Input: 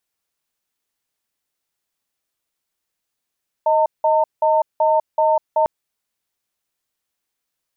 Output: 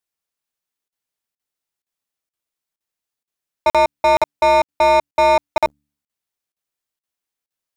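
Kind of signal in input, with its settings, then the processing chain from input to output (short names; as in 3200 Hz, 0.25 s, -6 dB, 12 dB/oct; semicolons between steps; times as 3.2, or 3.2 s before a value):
cadence 626 Hz, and 906 Hz, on 0.20 s, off 0.18 s, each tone -15.5 dBFS 2.00 s
de-hum 72.3 Hz, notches 4; sample leveller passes 3; crackling interface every 0.47 s, samples 2048, zero, from 0.88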